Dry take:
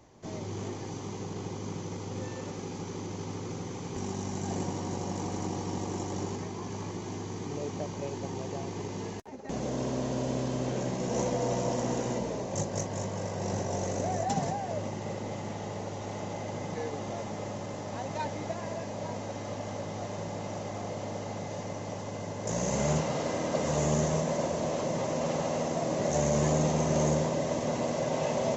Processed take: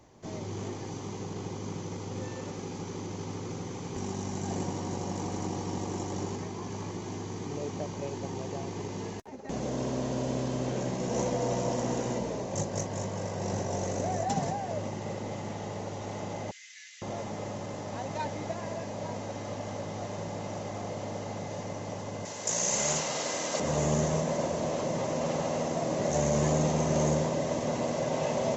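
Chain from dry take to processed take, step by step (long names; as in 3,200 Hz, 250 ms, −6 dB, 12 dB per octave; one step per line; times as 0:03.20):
0:16.51–0:17.02: Butterworth high-pass 1,800 Hz 48 dB per octave
0:22.25–0:23.60: spectral tilt +3.5 dB per octave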